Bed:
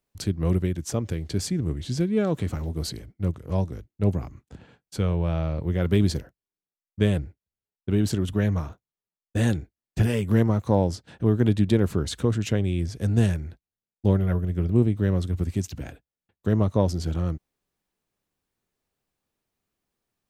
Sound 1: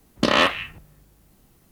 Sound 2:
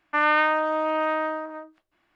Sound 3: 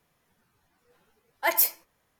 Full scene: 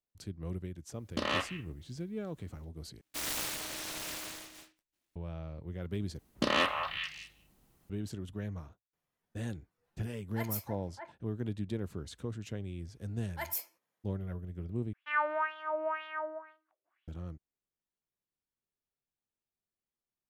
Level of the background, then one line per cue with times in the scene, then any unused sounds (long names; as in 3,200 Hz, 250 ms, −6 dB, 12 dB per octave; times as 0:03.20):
bed −16 dB
0:00.94: mix in 1 −14.5 dB
0:03.01: overwrite with 2 −16 dB + short delay modulated by noise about 2,500 Hz, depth 0.45 ms
0:06.19: overwrite with 1 −10.5 dB + echo through a band-pass that steps 205 ms, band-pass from 970 Hz, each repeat 1.4 octaves, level −2.5 dB
0:08.93: mix in 3 −16.5 dB + echo whose low-pass opens from repeat to repeat 306 ms, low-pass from 750 Hz, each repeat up 1 octave, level 0 dB
0:11.94: mix in 3 −14.5 dB + high-pass filter 170 Hz
0:14.93: overwrite with 2 −2 dB + LFO wah 2 Hz 460–3,400 Hz, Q 4.4